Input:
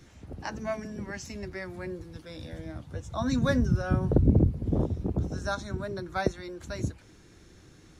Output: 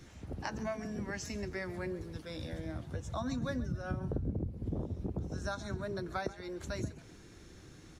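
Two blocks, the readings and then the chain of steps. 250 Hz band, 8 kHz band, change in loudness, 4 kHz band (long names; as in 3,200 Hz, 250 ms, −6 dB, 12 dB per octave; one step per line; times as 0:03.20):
−9.0 dB, can't be measured, −9.0 dB, −5.0 dB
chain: downward compressor 5 to 1, threshold −34 dBFS, peak gain reduction 16.5 dB
echo with shifted repeats 134 ms, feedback 35%, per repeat +39 Hz, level −17 dB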